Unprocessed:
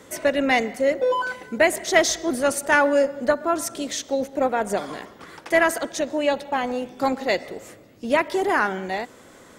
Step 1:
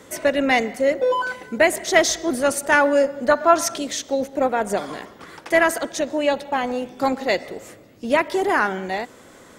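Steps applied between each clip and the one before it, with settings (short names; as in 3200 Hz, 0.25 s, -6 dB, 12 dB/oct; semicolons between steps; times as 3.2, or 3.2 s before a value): spectral gain 3.31–3.78, 600–6900 Hz +7 dB; gain +1.5 dB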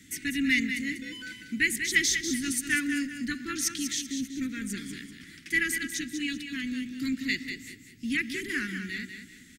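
elliptic band-stop 280–1900 Hz, stop band 70 dB; feedback echo 0.193 s, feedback 33%, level -8 dB; gain -3.5 dB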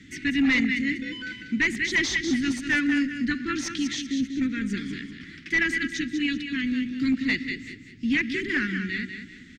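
overloaded stage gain 23.5 dB; air absorption 170 m; gain +7 dB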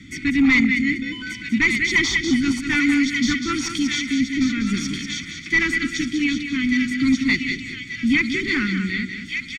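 comb 0.9 ms, depth 72%; thin delay 1.185 s, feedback 46%, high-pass 2300 Hz, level -3 dB; gain +3.5 dB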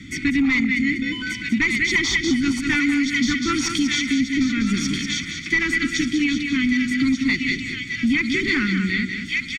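compressor, threshold -20 dBFS, peak gain reduction 7.5 dB; gain +3.5 dB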